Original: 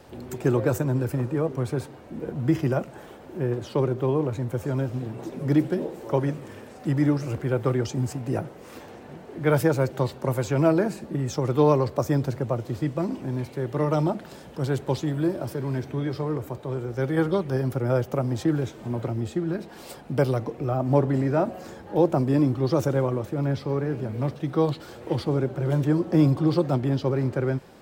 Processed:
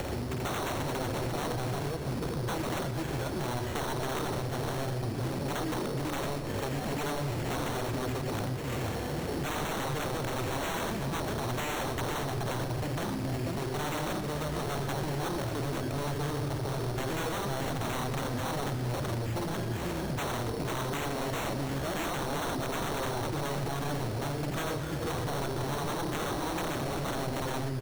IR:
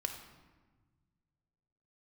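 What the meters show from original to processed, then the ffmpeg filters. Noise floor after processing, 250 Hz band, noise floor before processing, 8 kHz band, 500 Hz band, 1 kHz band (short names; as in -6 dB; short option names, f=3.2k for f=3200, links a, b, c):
-35 dBFS, -9.5 dB, -45 dBFS, +4.5 dB, -9.0 dB, -1.0 dB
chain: -filter_complex "[0:a]equalizer=f=67:t=o:w=0.99:g=14,bandreject=f=77.18:t=h:w=4,bandreject=f=154.36:t=h:w=4,bandreject=f=231.54:t=h:w=4,bandreject=f=308.72:t=h:w=4,bandreject=f=385.9:t=h:w=4,acompressor=mode=upward:threshold=-23dB:ratio=2.5,aecho=1:1:49|84|492:0.501|0.447|0.473,aeval=exprs='0.0708*(abs(mod(val(0)/0.0708+3,4)-2)-1)':c=same,acrossover=split=83|1400[a][b][c];[a]acompressor=threshold=-45dB:ratio=4[d];[b]acompressor=threshold=-32dB:ratio=4[e];[c]acompressor=threshold=-40dB:ratio=4[f];[d][e][f]amix=inputs=3:normalize=0,acrusher=samples=9:mix=1:aa=0.000001,asplit=2[g][h];[1:a]atrim=start_sample=2205,asetrate=28665,aresample=44100,adelay=119[i];[h][i]afir=irnorm=-1:irlink=0,volume=-13dB[j];[g][j]amix=inputs=2:normalize=0"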